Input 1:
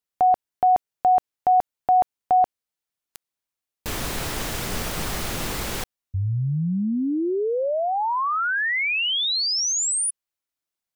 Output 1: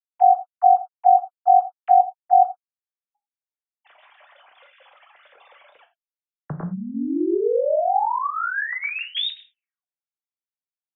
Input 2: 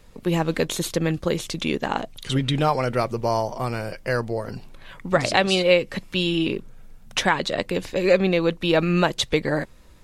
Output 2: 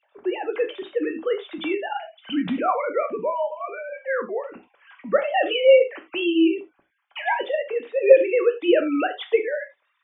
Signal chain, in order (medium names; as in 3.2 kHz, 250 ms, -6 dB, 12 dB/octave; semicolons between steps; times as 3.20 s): formants replaced by sine waves; gated-style reverb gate 120 ms falling, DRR 4 dB